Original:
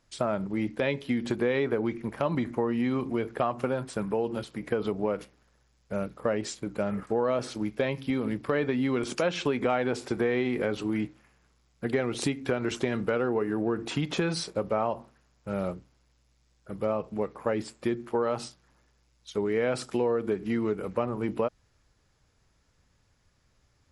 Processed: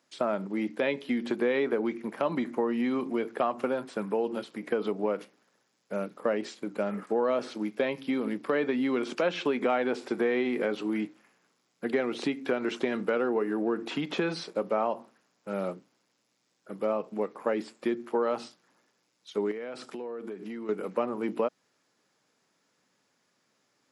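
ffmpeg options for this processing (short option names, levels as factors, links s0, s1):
-filter_complex "[0:a]asettb=1/sr,asplit=3[s0][s1][s2];[s0]atrim=end=19.514[s3];[s1]atrim=start=19.51:end=20.69,asetpts=PTS-STARTPTS,afade=t=in:d=0.004:c=qsin,afade=t=out:st=1.176:d=0.004:c=qsin,acompressor=threshold=0.02:ratio=6:attack=3.2:release=140:knee=1:detection=peak[s4];[s2]atrim=start=20.686[s5];[s3][s4]acrossfade=d=0.004:c1=hsin:c2=qsin[s6];[s6][s5]acrossfade=d=0.004:c1=qsin:c2=hsin,highpass=f=200:w=0.5412,highpass=f=200:w=1.3066,acrossover=split=4500[s7][s8];[s8]acompressor=threshold=0.00178:ratio=4:attack=1:release=60[s9];[s7][s9]amix=inputs=2:normalize=0"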